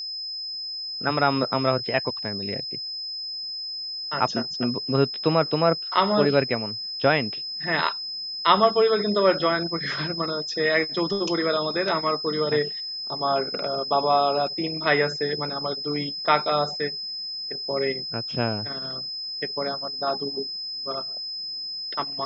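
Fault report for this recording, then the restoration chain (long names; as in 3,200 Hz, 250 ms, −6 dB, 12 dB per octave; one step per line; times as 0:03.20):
whistle 5,100 Hz −30 dBFS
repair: notch filter 5,100 Hz, Q 30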